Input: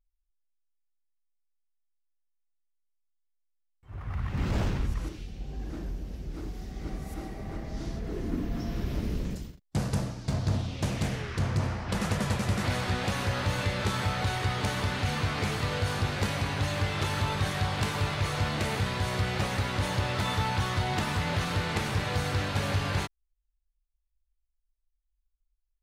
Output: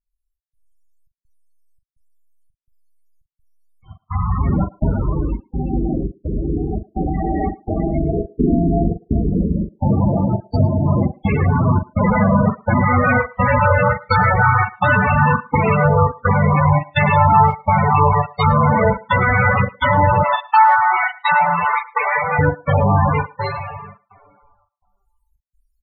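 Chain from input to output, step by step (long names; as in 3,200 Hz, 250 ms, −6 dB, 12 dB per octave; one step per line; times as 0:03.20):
convolution reverb RT60 1.8 s, pre-delay 37 ms, DRR −11 dB
gate pattern "xxxx..xx" 168 BPM −60 dB
downward compressor 2 to 1, threshold −25 dBFS, peak gain reduction 7.5 dB
double-tracking delay 41 ms −8.5 dB
treble cut that deepens with the level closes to 2,200 Hz, closed at −18.5 dBFS
0:20.23–0:22.39: high-pass filter 590 Hz 6 dB per octave
spectral tilt +2.5 dB per octave
notch filter 1,600 Hz, Q 25
spectral peaks only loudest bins 16
far-end echo of a speakerphone 110 ms, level −21 dB
automatic gain control gain up to 12 dB
one half of a high-frequency compander decoder only
level +3.5 dB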